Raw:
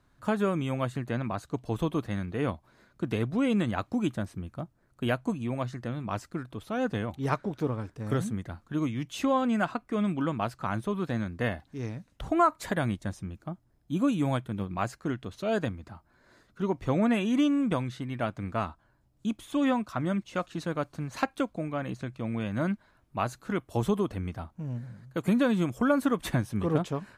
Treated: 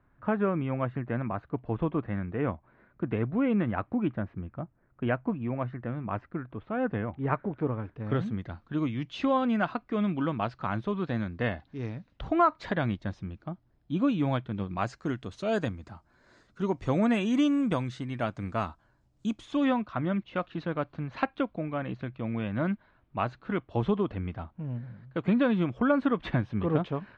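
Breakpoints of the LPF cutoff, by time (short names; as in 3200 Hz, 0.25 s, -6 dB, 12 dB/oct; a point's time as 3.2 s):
LPF 24 dB/oct
7.59 s 2300 Hz
8.45 s 4400 Hz
14.46 s 4400 Hz
15.23 s 8000 Hz
19.28 s 8000 Hz
19.9 s 3500 Hz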